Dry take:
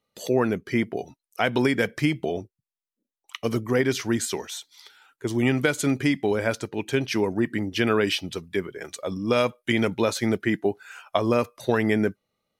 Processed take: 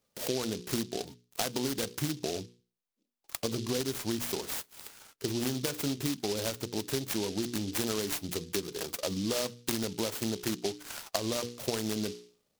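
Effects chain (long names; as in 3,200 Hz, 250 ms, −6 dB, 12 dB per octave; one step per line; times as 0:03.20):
mains-hum notches 60/120/180/240/300/360/420/480 Hz
downward compressor 6 to 1, threshold −31 dBFS, peak gain reduction 14 dB
short delay modulated by noise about 4,300 Hz, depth 0.16 ms
level +1.5 dB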